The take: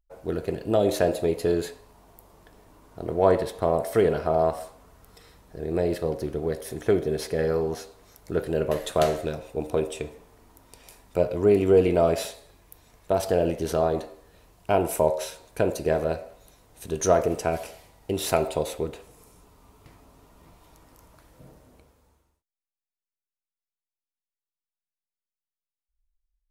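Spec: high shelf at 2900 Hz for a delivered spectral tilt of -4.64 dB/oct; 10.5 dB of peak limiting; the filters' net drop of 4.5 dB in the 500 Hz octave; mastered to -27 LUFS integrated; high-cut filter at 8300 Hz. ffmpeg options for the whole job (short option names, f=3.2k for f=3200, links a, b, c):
-af "lowpass=8.3k,equalizer=f=500:t=o:g=-6,highshelf=f=2.9k:g=5.5,volume=4dB,alimiter=limit=-14.5dB:level=0:latency=1"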